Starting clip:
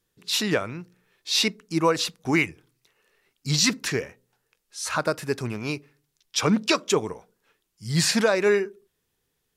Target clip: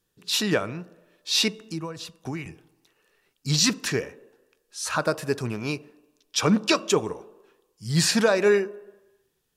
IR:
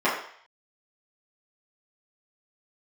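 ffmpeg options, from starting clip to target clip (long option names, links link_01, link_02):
-filter_complex "[0:a]bandreject=frequency=2100:width=12,asettb=1/sr,asplit=3[link_01][link_02][link_03];[link_01]atrim=end=1.604[link_04];[link_02]atrim=start=1.6:end=2.46,asetpts=PTS-STARTPTS,afade=type=in:duration=0.004:curve=qsin,afade=type=out:start_time=0.856:duration=0.004:curve=qsin,acrossover=split=130[link_05][link_06];[link_06]acompressor=threshold=-33dB:ratio=10[link_07];[link_05][link_07]amix=inputs=2:normalize=0[link_08];[link_03]atrim=start=2.456[link_09];[link_04][link_08]acrossfade=duration=0.004:curve1=hsin:curve2=qsin[link_10];[link_10][link_09]acrossfade=duration=0.004:curve1=qsin:curve2=hsin,asplit=2[link_11][link_12];[1:a]atrim=start_sample=2205,asetrate=23373,aresample=44100,highshelf=frequency=4200:gain=10[link_13];[link_12][link_13]afir=irnorm=-1:irlink=0,volume=-37.5dB[link_14];[link_11][link_14]amix=inputs=2:normalize=0"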